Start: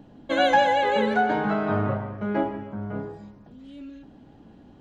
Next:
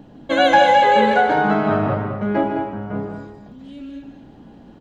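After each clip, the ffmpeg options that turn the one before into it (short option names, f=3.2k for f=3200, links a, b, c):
-filter_complex "[0:a]bandreject=f=50:t=h:w=6,bandreject=f=100:t=h:w=6,asplit=2[a][b];[b]aecho=0:1:148.7|212.8:0.355|0.398[c];[a][c]amix=inputs=2:normalize=0,volume=5.5dB"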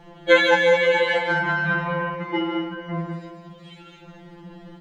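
-af "equalizer=f=2k:t=o:w=1.2:g=6,acompressor=threshold=-14dB:ratio=6,afftfilt=real='re*2.83*eq(mod(b,8),0)':imag='im*2.83*eq(mod(b,8),0)':win_size=2048:overlap=0.75,volume=5dB"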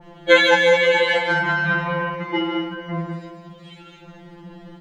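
-af "adynamicequalizer=threshold=0.02:dfrequency=2200:dqfactor=0.7:tfrequency=2200:tqfactor=0.7:attack=5:release=100:ratio=0.375:range=2:mode=boostabove:tftype=highshelf,volume=1.5dB"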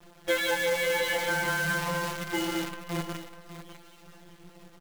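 -af "acompressor=threshold=-17dB:ratio=4,acrusher=bits=5:dc=4:mix=0:aa=0.000001,aecho=1:1:599:0.266,volume=-7.5dB"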